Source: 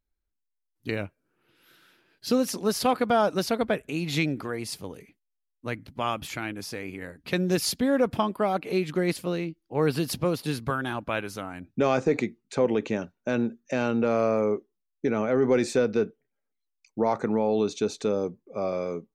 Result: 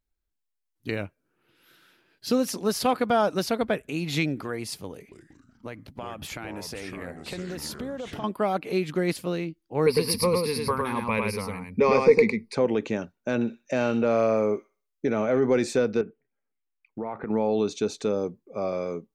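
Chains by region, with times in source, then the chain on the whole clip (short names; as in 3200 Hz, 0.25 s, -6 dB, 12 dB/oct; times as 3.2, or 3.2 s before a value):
4.93–8.24 bell 640 Hz +5 dB 1.2 oct + compressor 12:1, threshold -31 dBFS + echoes that change speed 0.185 s, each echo -4 st, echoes 3, each echo -6 dB
9.86–12.55 ripple EQ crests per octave 0.89, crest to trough 16 dB + echo 0.105 s -3.5 dB
13.35–15.4 bell 610 Hz +5 dB 0.23 oct + thin delay 62 ms, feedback 32%, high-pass 2300 Hz, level -5 dB
16.01–17.3 bell 590 Hz -3 dB 0.32 oct + compressor 3:1, threshold -30 dBFS + steep low-pass 2900 Hz
whole clip: dry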